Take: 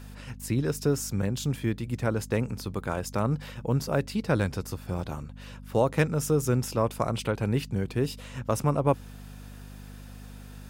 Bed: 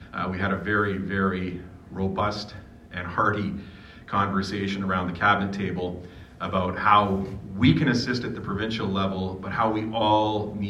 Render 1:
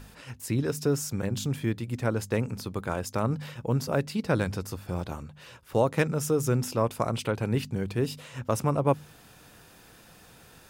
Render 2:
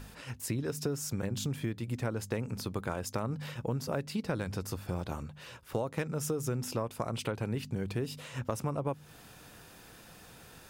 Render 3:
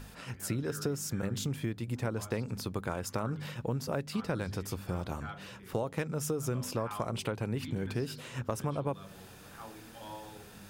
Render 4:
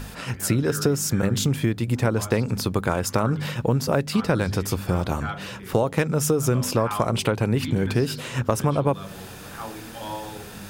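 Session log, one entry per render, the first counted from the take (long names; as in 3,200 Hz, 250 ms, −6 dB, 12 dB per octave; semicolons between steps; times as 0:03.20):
hum removal 50 Hz, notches 5
downward compressor 6 to 1, threshold −30 dBFS, peak gain reduction 12.5 dB
mix in bed −25 dB
level +12 dB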